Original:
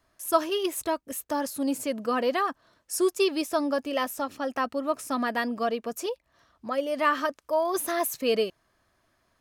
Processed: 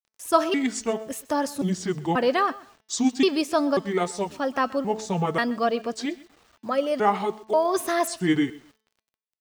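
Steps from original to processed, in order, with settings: trilling pitch shifter -6.5 st, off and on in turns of 0.538 s; on a send: feedback echo 0.127 s, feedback 22%, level -20.5 dB; on the sum: bit-crush 10-bit; bell 12000 Hz -13.5 dB 0.36 oct; de-hum 218.7 Hz, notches 29; gain +4 dB

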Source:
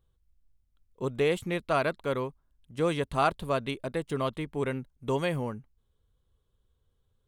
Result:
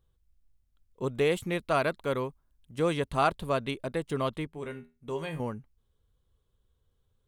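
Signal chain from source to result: 1.16–2.82 high shelf 9300 Hz +4.5 dB; 4.47–5.4 resonator 80 Hz, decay 0.29 s, harmonics all, mix 80%

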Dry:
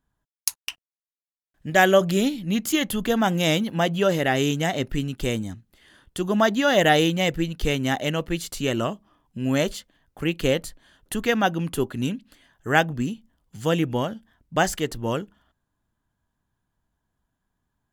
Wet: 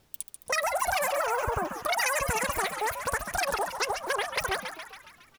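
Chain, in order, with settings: G.711 law mismatch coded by mu; spectral gain 3.73–5.49, 480–5500 Hz -14 dB; compressor 5:1, threshold -25 dBFS, peak gain reduction 12.5 dB; frequency-shifting echo 0.46 s, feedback 58%, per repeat +39 Hz, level -8.5 dB; wide varispeed 3.33×; added noise pink -67 dBFS

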